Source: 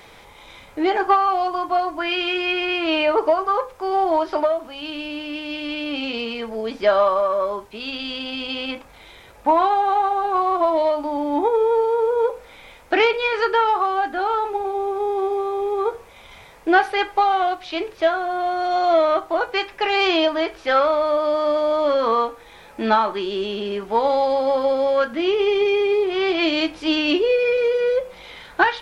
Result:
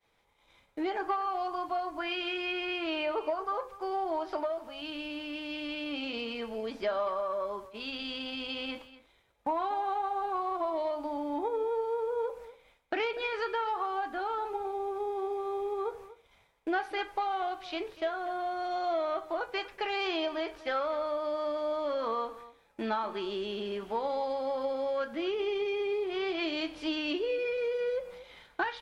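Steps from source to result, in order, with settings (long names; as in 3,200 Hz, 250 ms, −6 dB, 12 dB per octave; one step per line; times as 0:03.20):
downward expander −34 dBFS
downward compressor 2 to 1, threshold −24 dBFS, peak gain reduction 8 dB
single-tap delay 242 ms −17 dB
level −8.5 dB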